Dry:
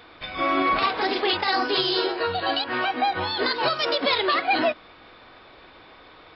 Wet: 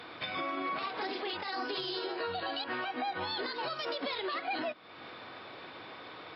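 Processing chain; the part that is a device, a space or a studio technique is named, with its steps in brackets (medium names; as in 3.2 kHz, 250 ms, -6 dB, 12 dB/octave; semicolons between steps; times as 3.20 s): podcast mastering chain (high-pass 100 Hz 24 dB/octave; de-esser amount 55%; compression 3:1, threshold -37 dBFS, peak gain reduction 14 dB; peak limiter -28 dBFS, peak gain reduction 7 dB; trim +2 dB; MP3 96 kbps 44.1 kHz)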